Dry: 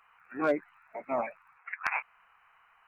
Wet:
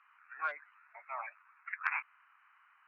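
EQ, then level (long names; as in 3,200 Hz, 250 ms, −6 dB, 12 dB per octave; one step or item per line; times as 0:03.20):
high-pass filter 1,200 Hz 24 dB per octave
high-frequency loss of the air 230 metres
high-shelf EQ 2,100 Hz −9.5 dB
+4.5 dB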